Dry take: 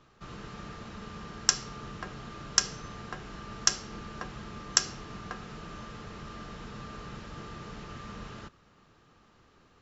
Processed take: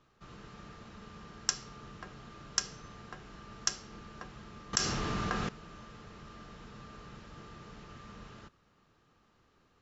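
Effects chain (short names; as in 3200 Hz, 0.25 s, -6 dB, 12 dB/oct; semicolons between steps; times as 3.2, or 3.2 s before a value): 4.73–5.49 fast leveller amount 70%; gain -7 dB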